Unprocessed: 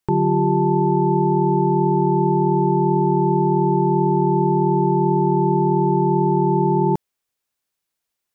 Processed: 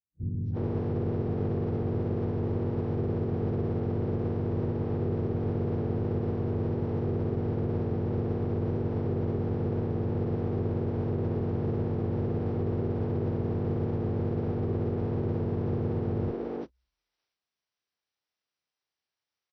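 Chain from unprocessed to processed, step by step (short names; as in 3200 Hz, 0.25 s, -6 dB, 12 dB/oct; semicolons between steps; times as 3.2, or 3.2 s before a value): minimum comb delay 8.2 ms; notches 50/100/150/200 Hz; formant-preserving pitch shift -8 st; HPF 150 Hz; bands offset in time lows, highs 0.15 s, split 540 Hz; speed mistake 78 rpm record played at 33 rpm; gain -7.5 dB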